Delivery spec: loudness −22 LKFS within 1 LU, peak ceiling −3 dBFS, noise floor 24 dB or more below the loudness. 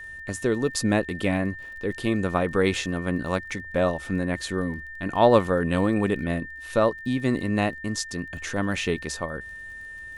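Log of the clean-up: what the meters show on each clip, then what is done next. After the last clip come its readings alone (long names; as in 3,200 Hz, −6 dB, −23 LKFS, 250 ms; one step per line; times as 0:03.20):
crackle rate 29 per second; interfering tone 1,800 Hz; level of the tone −37 dBFS; integrated loudness −25.5 LKFS; sample peak −5.5 dBFS; target loudness −22.0 LKFS
→ click removal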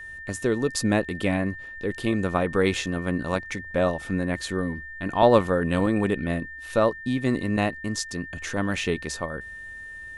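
crackle rate 0 per second; interfering tone 1,800 Hz; level of the tone −37 dBFS
→ notch filter 1,800 Hz, Q 30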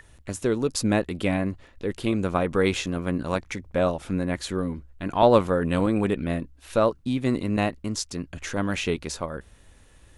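interfering tone none found; integrated loudness −26.0 LKFS; sample peak −5.0 dBFS; target loudness −22.0 LKFS
→ level +4 dB
brickwall limiter −3 dBFS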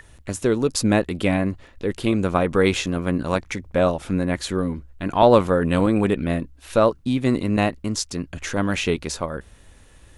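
integrated loudness −22.0 LKFS; sample peak −3.0 dBFS; background noise floor −50 dBFS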